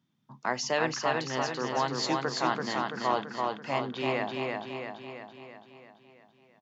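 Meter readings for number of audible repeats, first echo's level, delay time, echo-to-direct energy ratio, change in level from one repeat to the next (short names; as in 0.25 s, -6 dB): 7, -3.0 dB, 0.335 s, -1.5 dB, -5.0 dB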